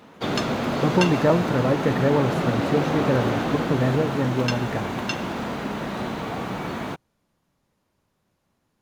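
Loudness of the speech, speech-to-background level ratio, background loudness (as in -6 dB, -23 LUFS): -24.0 LUFS, 2.5 dB, -26.5 LUFS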